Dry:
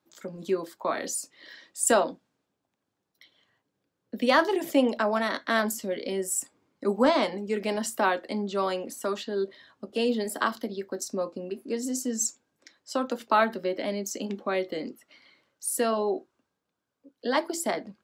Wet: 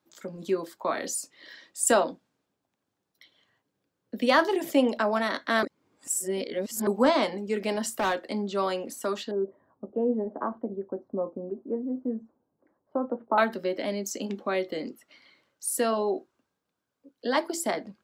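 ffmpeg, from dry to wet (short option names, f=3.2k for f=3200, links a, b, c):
-filter_complex "[0:a]asettb=1/sr,asplit=3[a][b][c];[a]atrim=end=7.794[d];[b]atrim=start=7.79:end=8.51,asetpts=PTS-STARTPTS,afade=t=in:d=0.004:c=qsin,afade=t=out:st=0.716:d=0.004:c=qsin,volume=22dB,asoftclip=hard,volume=-22dB[e];[c]atrim=start=8.506[f];[d][e]acrossfade=d=0.004:c1=hsin:c2=qsin[g];[g][f]acrossfade=d=0.004:c1=qsin:c2=hsin,asettb=1/sr,asplit=3[h][i][j];[h]atrim=end=9.314[k];[i]atrim=start=9.31:end=13.38,asetpts=PTS-STARTPTS,afade=t=in:d=0.004:c=qsin,afade=t=out:st=4.066:d=0.004:c=qsin,lowpass=f=1k:w=0.5412,lowpass=f=1k:w=1.3066[l];[j]atrim=start=13.376[m];[k][l]acrossfade=d=0.004:c1=hsin:c2=qsin[n];[n][m]acrossfade=d=0.004:c1=qsin:c2=hsin,asplit=3[o][p][q];[o]atrim=end=5.632[r];[p]atrim=start=5.628:end=6.872,asetpts=PTS-STARTPTS,areverse[s];[q]atrim=start=6.868[t];[r][s]acrossfade=d=0.004:c1=hsin:c2=hsin[u];[u][t]acrossfade=d=0.004:c1=hsin:c2=hsin"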